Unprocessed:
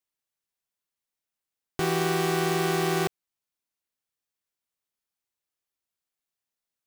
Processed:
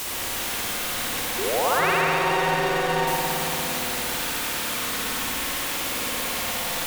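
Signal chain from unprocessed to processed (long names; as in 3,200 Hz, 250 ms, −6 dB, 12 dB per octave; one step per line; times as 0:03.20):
sign of each sample alone
tape wow and flutter 20 cents
sound drawn into the spectrogram rise, 0:01.38–0:01.91, 350–2,900 Hz −33 dBFS
delay that swaps between a low-pass and a high-pass 108 ms, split 1,400 Hz, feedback 61%, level −3 dB
spring reverb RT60 3.2 s, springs 56 ms, chirp 30 ms, DRR −5.5 dB
level +3.5 dB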